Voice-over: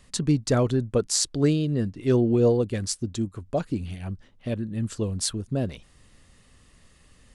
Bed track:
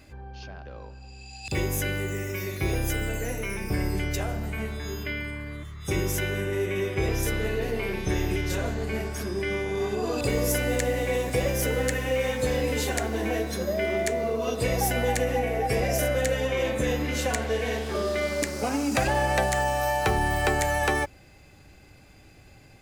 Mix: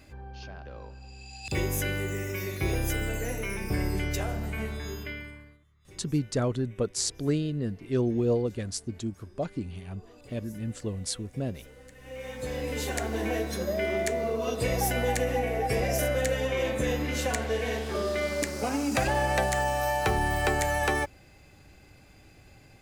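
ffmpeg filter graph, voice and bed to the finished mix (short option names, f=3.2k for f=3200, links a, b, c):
-filter_complex "[0:a]adelay=5850,volume=-5.5dB[a];[1:a]volume=22dB,afade=t=out:st=4.76:d=0.83:silence=0.0630957,afade=t=in:st=11.95:d=1.22:silence=0.0668344[b];[a][b]amix=inputs=2:normalize=0"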